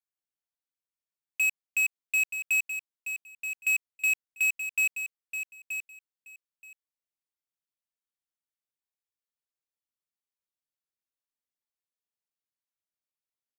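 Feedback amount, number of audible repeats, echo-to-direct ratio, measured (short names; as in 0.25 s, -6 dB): 16%, 2, -9.0 dB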